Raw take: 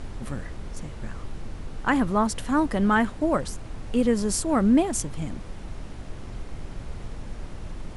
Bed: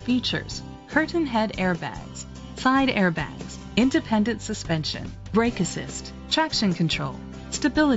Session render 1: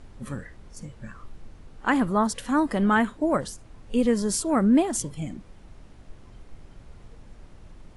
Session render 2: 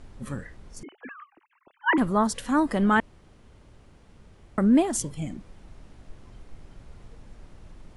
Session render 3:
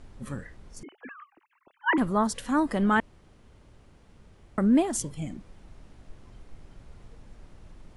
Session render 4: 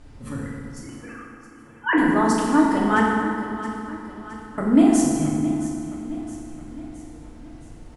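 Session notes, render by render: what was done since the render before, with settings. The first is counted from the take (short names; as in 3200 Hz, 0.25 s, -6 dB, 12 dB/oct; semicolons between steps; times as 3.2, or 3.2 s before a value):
noise print and reduce 11 dB
0.83–1.98 sine-wave speech; 3–4.58 room tone
gain -2 dB
feedback echo 0.668 s, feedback 51%, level -14 dB; FDN reverb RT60 2.2 s, low-frequency decay 1.25×, high-frequency decay 0.65×, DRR -4.5 dB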